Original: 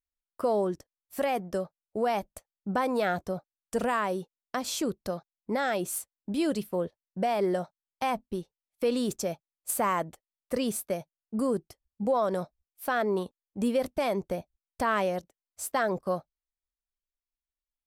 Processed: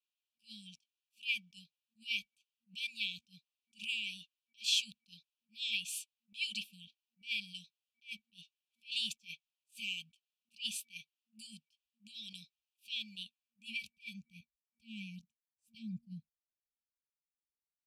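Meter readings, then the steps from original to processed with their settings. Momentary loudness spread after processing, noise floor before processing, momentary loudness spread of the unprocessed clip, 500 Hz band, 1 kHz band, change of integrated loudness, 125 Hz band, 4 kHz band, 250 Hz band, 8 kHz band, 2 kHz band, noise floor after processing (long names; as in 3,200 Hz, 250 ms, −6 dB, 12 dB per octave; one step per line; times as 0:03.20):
21 LU, below −85 dBFS, 10 LU, below −40 dB, below −40 dB, −9.0 dB, −16.0 dB, +5.0 dB, −21.5 dB, −8.5 dB, −5.5 dB, below −85 dBFS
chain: band-pass filter sweep 2,900 Hz → 530 Hz, 0:13.17–0:15.77
brick-wall band-stop 230–2,300 Hz
level that may rise only so fast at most 300 dB per second
level +10.5 dB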